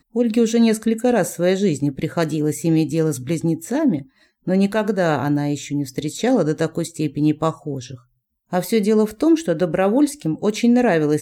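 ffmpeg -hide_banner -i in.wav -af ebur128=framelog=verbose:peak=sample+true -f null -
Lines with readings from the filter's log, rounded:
Integrated loudness:
  I:         -19.6 LUFS
  Threshold: -29.9 LUFS
Loudness range:
  LRA:         3.1 LU
  Threshold: -40.6 LUFS
  LRA low:   -22.1 LUFS
  LRA high:  -19.0 LUFS
Sample peak:
  Peak:       -7.0 dBFS
True peak:
  Peak:       -7.0 dBFS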